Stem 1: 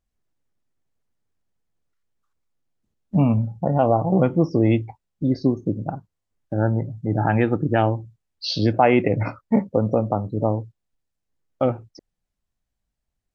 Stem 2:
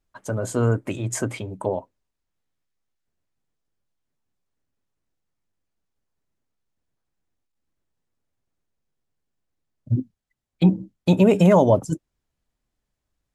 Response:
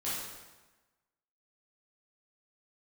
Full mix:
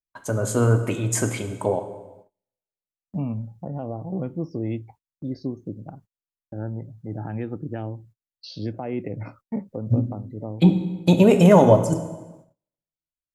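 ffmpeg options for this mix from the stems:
-filter_complex "[0:a]acrossover=split=460[a][b];[b]acompressor=threshold=-33dB:ratio=2.5[c];[a][c]amix=inputs=2:normalize=0,volume=-9.5dB[d];[1:a]volume=0dB,asplit=2[e][f];[f]volume=-10dB[g];[2:a]atrim=start_sample=2205[h];[g][h]afir=irnorm=-1:irlink=0[i];[d][e][i]amix=inputs=3:normalize=0,agate=range=-27dB:threshold=-49dB:ratio=16:detection=peak,highshelf=f=8.6k:g=6.5"

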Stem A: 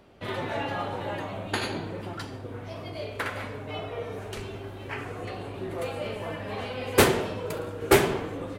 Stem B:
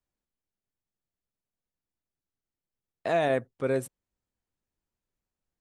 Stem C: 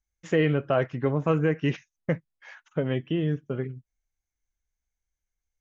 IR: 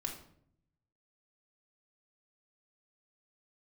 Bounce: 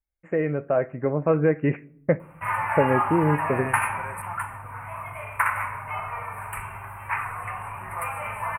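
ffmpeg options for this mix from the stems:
-filter_complex "[0:a]firequalizer=gain_entry='entry(120,0);entry(310,-23);entry(970,15);entry(1600,7);entry(3300,11)':delay=0.05:min_phase=1,adelay=2200,volume=-2dB,asplit=2[a][b];[b]volume=-8dB[c];[1:a]highpass=1.4k,adelay=350,volume=2.5dB[d];[2:a]equalizer=f=580:w=1.5:g=6.5,dynaudnorm=f=280:g=9:m=11.5dB,volume=-6dB,asplit=2[e][f];[f]volume=-15.5dB[g];[3:a]atrim=start_sample=2205[h];[c][g]amix=inputs=2:normalize=0[i];[i][h]afir=irnorm=-1:irlink=0[j];[a][d][e][j]amix=inputs=4:normalize=0,asuperstop=centerf=4700:order=12:qfactor=0.78"

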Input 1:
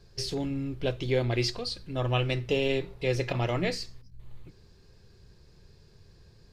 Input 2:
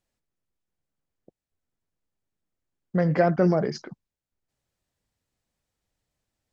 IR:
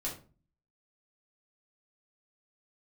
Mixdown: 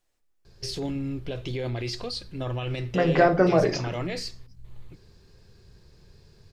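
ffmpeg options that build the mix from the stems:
-filter_complex "[0:a]alimiter=level_in=1dB:limit=-24dB:level=0:latency=1:release=32,volume=-1dB,adelay=450,volume=2dB[a];[1:a]equalizer=f=130:t=o:w=1.8:g=-9,volume=1.5dB,asplit=2[b][c];[c]volume=-4.5dB[d];[2:a]atrim=start_sample=2205[e];[d][e]afir=irnorm=-1:irlink=0[f];[a][b][f]amix=inputs=3:normalize=0"

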